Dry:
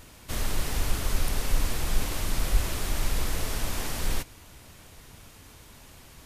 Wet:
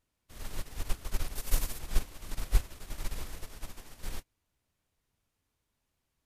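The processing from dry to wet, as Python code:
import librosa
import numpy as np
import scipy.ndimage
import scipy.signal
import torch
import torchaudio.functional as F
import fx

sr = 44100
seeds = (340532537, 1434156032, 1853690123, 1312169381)

y = fx.high_shelf(x, sr, hz=6300.0, db=10.0, at=(1.35, 1.79))
y = fx.upward_expand(y, sr, threshold_db=-37.0, expansion=2.5)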